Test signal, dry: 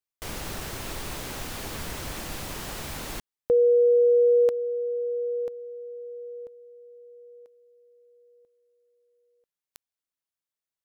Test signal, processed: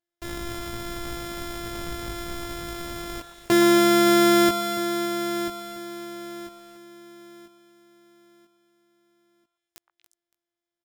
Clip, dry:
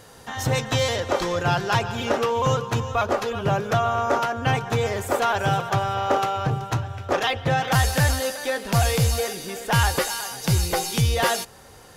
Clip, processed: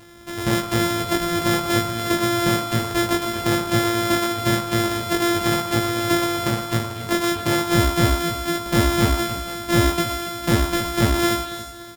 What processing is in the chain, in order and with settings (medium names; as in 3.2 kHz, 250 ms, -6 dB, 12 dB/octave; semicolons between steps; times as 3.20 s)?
sorted samples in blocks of 128 samples; doubling 18 ms -3 dB; on a send: repeats whose band climbs or falls 118 ms, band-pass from 1.1 kHz, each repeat 1.4 oct, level -6 dB; on the sum: bit-crushed delay 283 ms, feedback 35%, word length 7-bit, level -12.5 dB